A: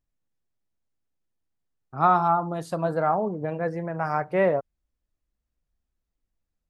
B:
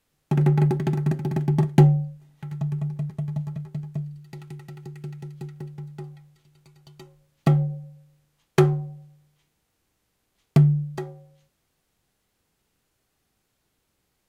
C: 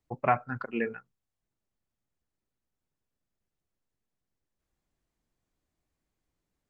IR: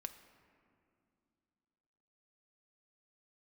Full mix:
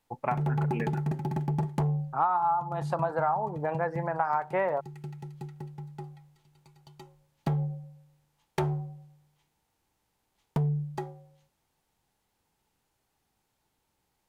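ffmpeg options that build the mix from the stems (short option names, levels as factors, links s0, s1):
-filter_complex "[0:a]equalizer=f=1200:w=0.38:g=14.5,adelay=200,volume=0.316[s0];[1:a]asoftclip=type=tanh:threshold=0.15,volume=0.596[s1];[2:a]volume=0.631[s2];[s0][s1][s2]amix=inputs=3:normalize=0,equalizer=f=870:t=o:w=0.33:g=10.5,acompressor=threshold=0.0631:ratio=8"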